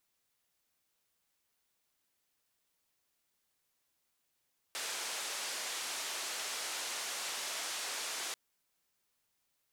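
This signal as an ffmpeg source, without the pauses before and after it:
ffmpeg -f lavfi -i "anoisesrc=color=white:duration=3.59:sample_rate=44100:seed=1,highpass=frequency=470,lowpass=frequency=7900,volume=-30.1dB" out.wav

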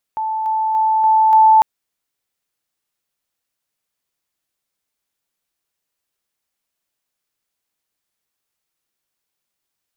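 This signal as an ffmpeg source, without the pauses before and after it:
ffmpeg -f lavfi -i "aevalsrc='pow(10,(-18.5+3*floor(t/0.29))/20)*sin(2*PI*877*t)':duration=1.45:sample_rate=44100" out.wav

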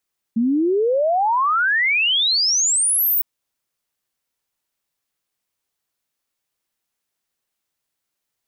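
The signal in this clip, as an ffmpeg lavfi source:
ffmpeg -f lavfi -i "aevalsrc='0.178*clip(min(t,2.86-t)/0.01,0,1)*sin(2*PI*220*2.86/log(16000/220)*(exp(log(16000/220)*t/2.86)-1))':duration=2.86:sample_rate=44100" out.wav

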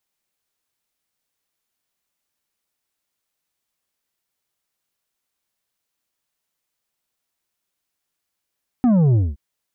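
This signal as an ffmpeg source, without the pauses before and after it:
ffmpeg -f lavfi -i "aevalsrc='0.224*clip((0.52-t)/0.21,0,1)*tanh(2.24*sin(2*PI*260*0.52/log(65/260)*(exp(log(65/260)*t/0.52)-1)))/tanh(2.24)':duration=0.52:sample_rate=44100" out.wav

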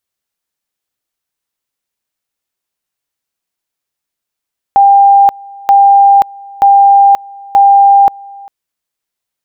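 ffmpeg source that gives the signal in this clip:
ffmpeg -f lavfi -i "aevalsrc='pow(10,(-2-25.5*gte(mod(t,0.93),0.53))/20)*sin(2*PI*797*t)':duration=3.72:sample_rate=44100" out.wav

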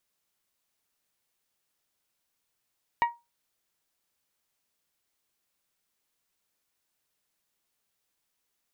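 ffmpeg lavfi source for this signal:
ffmpeg -f lavfi -i "aevalsrc='0.141*pow(10,-3*t/0.23)*sin(2*PI*944*t)+0.0596*pow(10,-3*t/0.142)*sin(2*PI*1888*t)+0.0251*pow(10,-3*t/0.125)*sin(2*PI*2265.6*t)+0.0106*pow(10,-3*t/0.107)*sin(2*PI*2832*t)+0.00447*pow(10,-3*t/0.087)*sin(2*PI*3776*t)':duration=0.89:sample_rate=44100" out.wav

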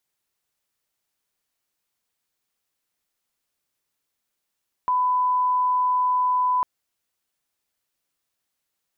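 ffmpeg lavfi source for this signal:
ffmpeg -f lavfi -i "sine=frequency=1000:duration=1.75:sample_rate=44100,volume=0.06dB" out.wav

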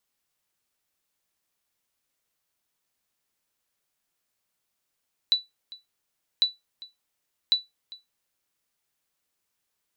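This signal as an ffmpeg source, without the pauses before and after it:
ffmpeg -f lavfi -i "aevalsrc='0.237*(sin(2*PI*3960*mod(t,1.1))*exp(-6.91*mod(t,1.1)/0.18)+0.0891*sin(2*PI*3960*max(mod(t,1.1)-0.4,0))*exp(-6.91*max(mod(t,1.1)-0.4,0)/0.18))':duration=3.3:sample_rate=44100" out.wav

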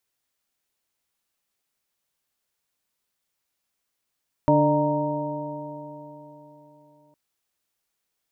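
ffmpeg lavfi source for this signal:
ffmpeg -f lavfi -i "aevalsrc='0.0794*pow(10,-3*t/3.76)*sin(2*PI*146.26*t)+0.112*pow(10,-3*t/3.76)*sin(2*PI*294.09*t)+0.0282*pow(10,-3*t/3.76)*sin(2*PI*445.04*t)+0.126*pow(10,-3*t/3.76)*sin(2*PI*600.58*t)+0.0126*pow(10,-3*t/3.76)*sin(2*PI*762.14*t)+0.0944*pow(10,-3*t/3.76)*sin(2*PI*931.04*t)':duration=2.66:sample_rate=44100" out.wav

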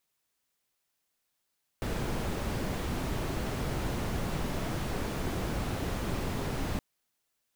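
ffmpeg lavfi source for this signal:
ffmpeg -f lavfi -i "anoisesrc=color=brown:amplitude=0.117:duration=4.97:sample_rate=44100:seed=1" out.wav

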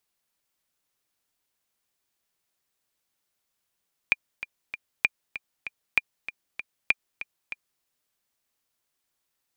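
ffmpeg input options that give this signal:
ffmpeg -f lavfi -i "aevalsrc='pow(10,(-6-14*gte(mod(t,3*60/194),60/194))/20)*sin(2*PI*2400*mod(t,60/194))*exp(-6.91*mod(t,60/194)/0.03)':duration=3.71:sample_rate=44100" out.wav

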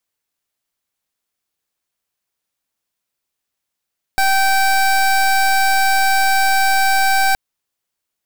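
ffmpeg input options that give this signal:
ffmpeg -f lavfi -i "aevalsrc='0.2*(2*lt(mod(776*t,1),0.24)-1)':duration=3.17:sample_rate=44100" out.wav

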